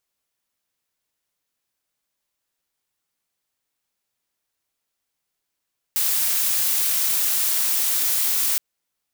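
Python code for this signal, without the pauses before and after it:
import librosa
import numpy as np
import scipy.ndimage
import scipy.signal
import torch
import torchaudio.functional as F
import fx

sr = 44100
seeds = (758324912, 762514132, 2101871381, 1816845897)

y = fx.noise_colour(sr, seeds[0], length_s=2.62, colour='blue', level_db=-21.0)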